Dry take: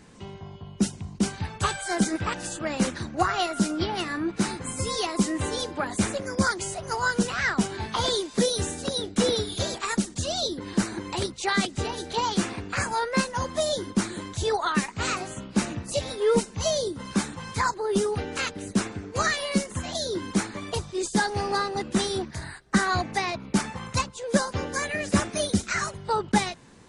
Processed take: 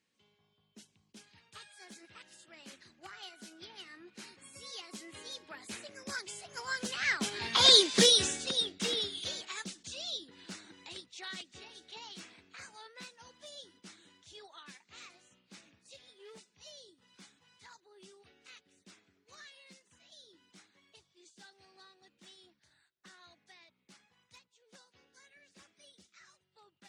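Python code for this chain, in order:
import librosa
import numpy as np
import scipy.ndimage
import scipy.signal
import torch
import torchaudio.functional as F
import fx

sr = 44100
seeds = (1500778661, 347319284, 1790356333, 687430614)

y = np.minimum(x, 2.0 * 10.0 ** (-16.5 / 20.0) - x)
y = fx.doppler_pass(y, sr, speed_mps=17, closest_m=3.6, pass_at_s=7.86)
y = fx.weighting(y, sr, curve='D')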